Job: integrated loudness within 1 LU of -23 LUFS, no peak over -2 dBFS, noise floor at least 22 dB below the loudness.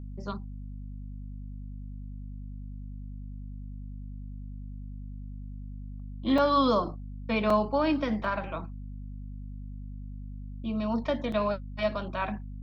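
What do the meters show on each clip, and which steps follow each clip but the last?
dropouts 4; longest dropout 3.6 ms; hum 50 Hz; harmonics up to 250 Hz; hum level -37 dBFS; loudness -29.0 LUFS; peak -13.0 dBFS; loudness target -23.0 LUFS
-> interpolate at 6.38/7.5/8.24/11.32, 3.6 ms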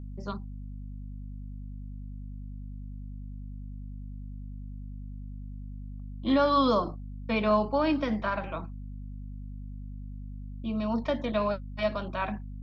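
dropouts 0; hum 50 Hz; harmonics up to 250 Hz; hum level -37 dBFS
-> notches 50/100/150/200/250 Hz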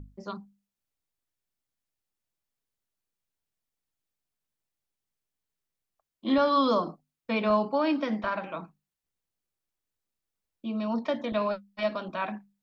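hum none; loudness -28.5 LUFS; peak -13.0 dBFS; loudness target -23.0 LUFS
-> gain +5.5 dB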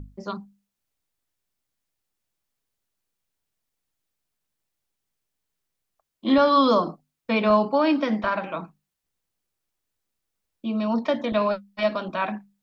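loudness -23.0 LUFS; peak -7.5 dBFS; noise floor -82 dBFS

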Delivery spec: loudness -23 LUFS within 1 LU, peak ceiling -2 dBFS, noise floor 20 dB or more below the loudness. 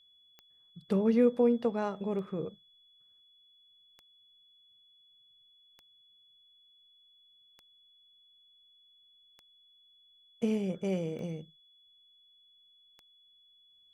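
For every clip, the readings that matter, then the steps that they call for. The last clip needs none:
clicks 8; steady tone 3400 Hz; tone level -61 dBFS; loudness -31.0 LUFS; peak -15.0 dBFS; loudness target -23.0 LUFS
-> de-click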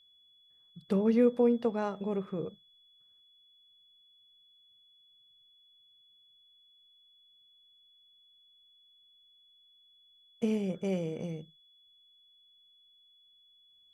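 clicks 0; steady tone 3400 Hz; tone level -61 dBFS
-> notch 3400 Hz, Q 30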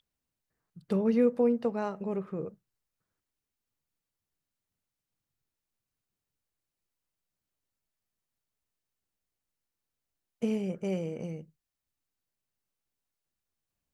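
steady tone none; loudness -30.5 LUFS; peak -15.0 dBFS; loudness target -23.0 LUFS
-> gain +7.5 dB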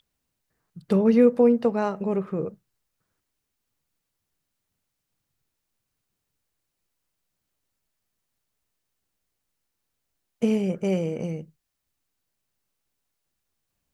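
loudness -23.0 LUFS; peak -7.5 dBFS; noise floor -81 dBFS

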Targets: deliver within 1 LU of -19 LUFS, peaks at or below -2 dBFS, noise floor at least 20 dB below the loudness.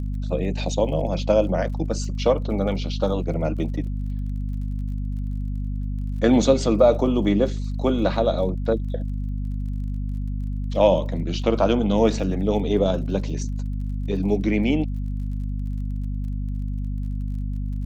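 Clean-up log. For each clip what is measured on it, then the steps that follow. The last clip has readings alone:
ticks 34/s; hum 50 Hz; harmonics up to 250 Hz; hum level -24 dBFS; loudness -24.0 LUFS; peak -4.5 dBFS; loudness target -19.0 LUFS
-> de-click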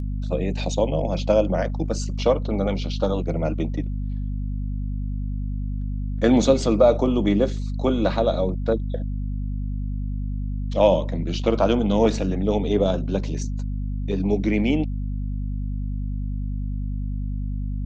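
ticks 0.056/s; hum 50 Hz; harmonics up to 250 Hz; hum level -24 dBFS
-> de-hum 50 Hz, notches 5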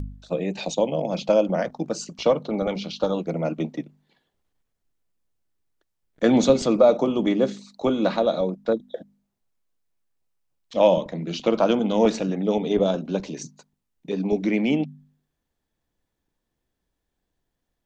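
hum none; loudness -23.0 LUFS; peak -5.0 dBFS; loudness target -19.0 LUFS
-> gain +4 dB; limiter -2 dBFS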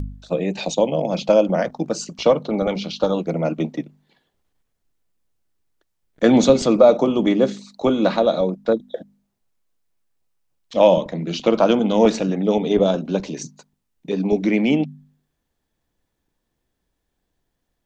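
loudness -19.5 LUFS; peak -2.0 dBFS; noise floor -76 dBFS

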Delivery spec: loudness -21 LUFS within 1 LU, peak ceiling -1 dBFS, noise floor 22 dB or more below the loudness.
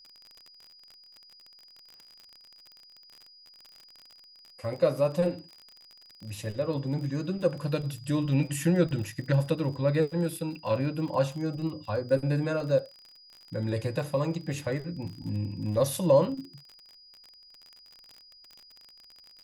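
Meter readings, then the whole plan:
ticks 40/s; steady tone 4900 Hz; tone level -52 dBFS; loudness -29.0 LUFS; peak -10.5 dBFS; loudness target -21.0 LUFS
-> de-click; notch 4900 Hz, Q 30; gain +8 dB

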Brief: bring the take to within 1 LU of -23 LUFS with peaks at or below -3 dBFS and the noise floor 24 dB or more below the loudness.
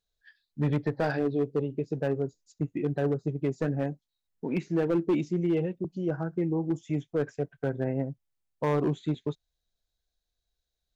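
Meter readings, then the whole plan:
clipped 1.3%; flat tops at -20.0 dBFS; loudness -30.0 LUFS; peak -20.0 dBFS; loudness target -23.0 LUFS
-> clip repair -20 dBFS; gain +7 dB

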